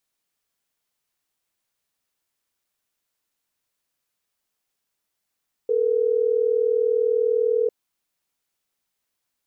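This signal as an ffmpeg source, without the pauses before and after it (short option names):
-f lavfi -i "aevalsrc='0.0944*(sin(2*PI*440*t)+sin(2*PI*480*t))*clip(min(mod(t,6),2-mod(t,6))/0.005,0,1)':d=3.12:s=44100"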